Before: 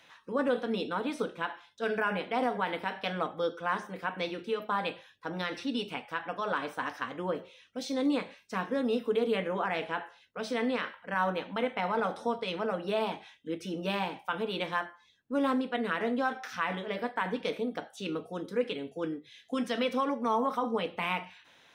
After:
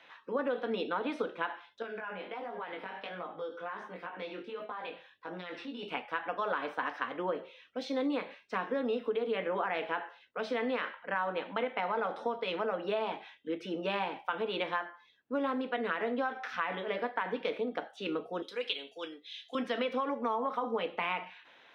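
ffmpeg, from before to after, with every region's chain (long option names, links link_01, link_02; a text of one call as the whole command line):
ffmpeg -i in.wav -filter_complex "[0:a]asettb=1/sr,asplit=3[link_01][link_02][link_03];[link_01]atrim=end=1.824[link_04];[link_02]atrim=start=1.82:end=5.83,asetpts=PTS-STARTPTS,afade=type=in:duration=0.004:curve=qsin,afade=type=out:start_time=4.006:duration=0.004:curve=qsin,acompressor=threshold=-34dB:ratio=12:attack=3.2:release=140:knee=1:detection=peak,flanger=delay=17:depth=4.7:speed=1.4[link_05];[link_03]atrim=start=5.826[link_06];[link_04][link_05]acrossfade=duration=0.004:curve1=hsin:curve2=qsin[link_07];[link_07][link_06]acrossfade=duration=0.004:curve1=qsin:curve2=hsin,asettb=1/sr,asplit=3[link_08][link_09][link_10];[link_08]atrim=end=18.424[link_11];[link_09]atrim=start=18.42:end=19.55,asetpts=PTS-STARTPTS,afade=type=in:duration=0.004:curve=qsin,afade=type=out:start_time=1.126:duration=0.004:curve=qsin,highpass=frequency=1200:poles=1,highshelf=frequency=2500:width_type=q:width=1.5:gain=9.5[link_12];[link_10]atrim=start=19.546[link_13];[link_11][link_12]acrossfade=duration=0.004:curve1=hsin:curve2=qsin[link_14];[link_14][link_13]acrossfade=duration=0.004:curve1=qsin:curve2=hsin,acrossover=split=260 3900:gain=0.224 1 0.1[link_15][link_16][link_17];[link_15][link_16][link_17]amix=inputs=3:normalize=0,acompressor=threshold=-31dB:ratio=6,volume=2.5dB" out.wav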